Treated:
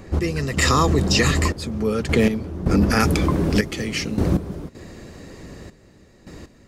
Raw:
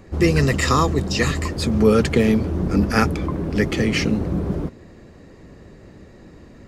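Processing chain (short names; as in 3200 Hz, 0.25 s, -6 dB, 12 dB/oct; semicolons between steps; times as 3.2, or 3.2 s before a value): step gate "x..xxxxx..." 79 bpm -12 dB; limiter -12.5 dBFS, peak gain reduction 9 dB; high shelf 3300 Hz +2.5 dB, from 3 s +10.5 dB; gain +4.5 dB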